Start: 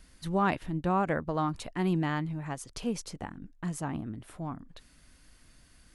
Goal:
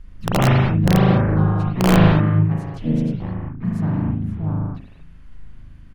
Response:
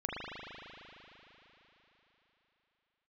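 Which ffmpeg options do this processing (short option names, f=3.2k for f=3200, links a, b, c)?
-filter_complex "[0:a]asplit=4[a][b][c][d];[b]asetrate=29433,aresample=44100,atempo=1.49831,volume=-4dB[e];[c]asetrate=52444,aresample=44100,atempo=0.840896,volume=-10dB[f];[d]asetrate=58866,aresample=44100,atempo=0.749154,volume=-10dB[g];[a][e][f][g]amix=inputs=4:normalize=0,bass=f=250:g=14,treble=f=4k:g=-13,aeval=exprs='(mod(2.66*val(0)+1,2)-1)/2.66':c=same[h];[1:a]atrim=start_sample=2205,afade=t=out:st=0.29:d=0.01,atrim=end_sample=13230[i];[h][i]afir=irnorm=-1:irlink=0,volume=-1dB"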